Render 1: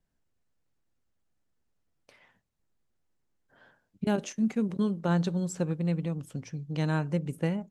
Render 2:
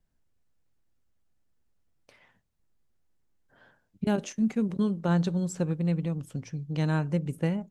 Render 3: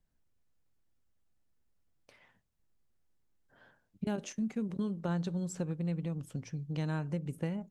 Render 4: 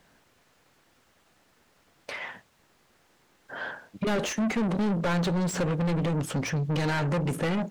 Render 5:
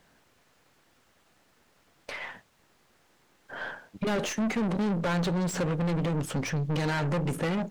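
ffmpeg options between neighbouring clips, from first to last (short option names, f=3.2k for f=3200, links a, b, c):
-af "lowshelf=f=110:g=6"
-af "acompressor=threshold=-30dB:ratio=2.5,volume=-3dB"
-filter_complex "[0:a]asplit=2[a][b];[b]highpass=f=720:p=1,volume=34dB,asoftclip=type=tanh:threshold=-22dB[c];[a][c]amix=inputs=2:normalize=0,lowpass=f=2.5k:p=1,volume=-6dB,volume=3dB"
-af "aeval=exprs='if(lt(val(0),0),0.708*val(0),val(0))':c=same"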